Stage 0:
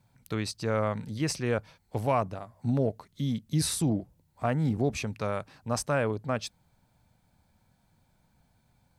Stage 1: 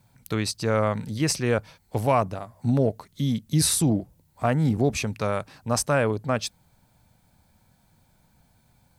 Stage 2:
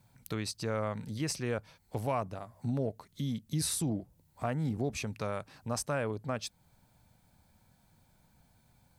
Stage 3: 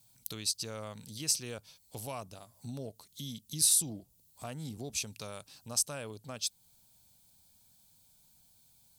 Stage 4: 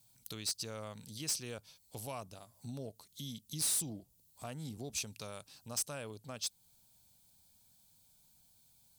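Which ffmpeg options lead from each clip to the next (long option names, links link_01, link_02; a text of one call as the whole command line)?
ffmpeg -i in.wav -af "highshelf=frequency=7100:gain=6,volume=5dB" out.wav
ffmpeg -i in.wav -af "acompressor=threshold=-37dB:ratio=1.5,volume=-4dB" out.wav
ffmpeg -i in.wav -af "aexciter=amount=5.9:drive=4.7:freq=2800,volume=-9dB" out.wav
ffmpeg -i in.wav -af "asoftclip=type=hard:threshold=-27.5dB,volume=-2.5dB" out.wav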